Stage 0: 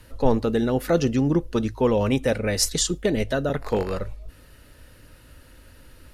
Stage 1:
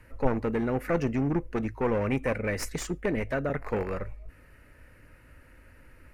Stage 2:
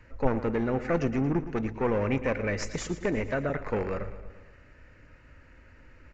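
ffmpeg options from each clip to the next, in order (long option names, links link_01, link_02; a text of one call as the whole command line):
ffmpeg -i in.wav -af "aeval=exprs='clip(val(0),-1,0.0841)':channel_layout=same,highshelf=frequency=2800:width_type=q:width=3:gain=-7.5,volume=-5dB" out.wav
ffmpeg -i in.wav -filter_complex "[0:a]asplit=2[link_01][link_02];[link_02]aecho=0:1:114|228|342|456|570|684:0.211|0.125|0.0736|0.0434|0.0256|0.0151[link_03];[link_01][link_03]amix=inputs=2:normalize=0,aresample=16000,aresample=44100" out.wav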